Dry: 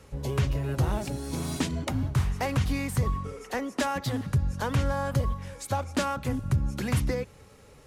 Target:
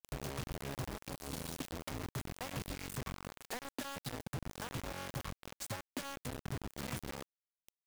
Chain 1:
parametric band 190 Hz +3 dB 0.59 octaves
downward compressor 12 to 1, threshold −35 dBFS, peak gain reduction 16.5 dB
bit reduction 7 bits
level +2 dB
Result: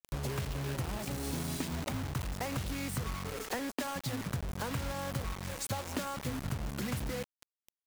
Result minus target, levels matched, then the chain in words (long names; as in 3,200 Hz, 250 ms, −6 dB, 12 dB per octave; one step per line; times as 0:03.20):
downward compressor: peak gain reduction −7.5 dB
parametric band 190 Hz +3 dB 0.59 octaves
downward compressor 12 to 1, threshold −43 dBFS, peak gain reduction 23.5 dB
bit reduction 7 bits
level +2 dB